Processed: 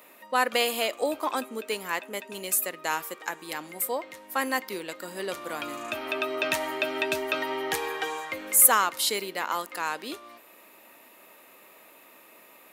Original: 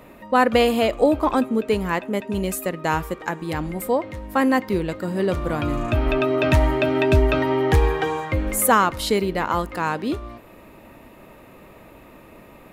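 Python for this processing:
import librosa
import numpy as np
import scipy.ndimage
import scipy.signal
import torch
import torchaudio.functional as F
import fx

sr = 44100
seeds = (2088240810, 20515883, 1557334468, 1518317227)

y = scipy.signal.sosfilt(scipy.signal.butter(2, 250.0, 'highpass', fs=sr, output='sos'), x)
y = fx.tilt_eq(y, sr, slope=3.5)
y = y * 10.0 ** (-6.5 / 20.0)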